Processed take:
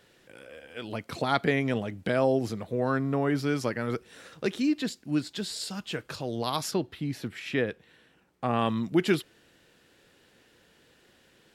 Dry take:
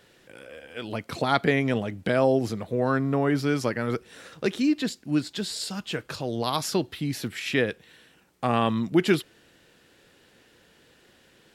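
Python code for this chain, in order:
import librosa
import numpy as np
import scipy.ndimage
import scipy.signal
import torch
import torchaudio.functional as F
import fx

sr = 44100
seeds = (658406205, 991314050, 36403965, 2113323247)

y = fx.high_shelf(x, sr, hz=3300.0, db=-9.0, at=(6.71, 8.59))
y = y * librosa.db_to_amplitude(-3.0)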